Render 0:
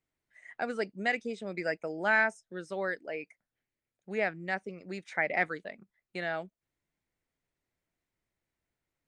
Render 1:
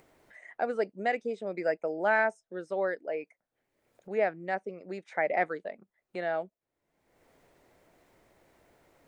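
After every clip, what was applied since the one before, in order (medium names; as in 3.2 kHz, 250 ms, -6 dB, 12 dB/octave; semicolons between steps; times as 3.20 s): peaking EQ 580 Hz +13 dB 2.4 oct; upward compressor, threshold -36 dBFS; trim -7.5 dB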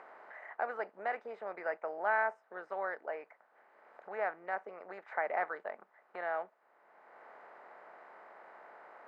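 spectral levelling over time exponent 0.6; band-pass filter 1.1 kHz, Q 2.5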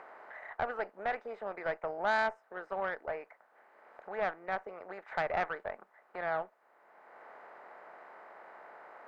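valve stage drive 26 dB, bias 0.45; trim +4 dB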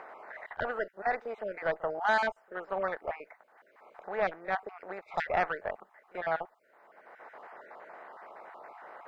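random holes in the spectrogram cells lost 22%; pre-echo 36 ms -20 dB; trim +4 dB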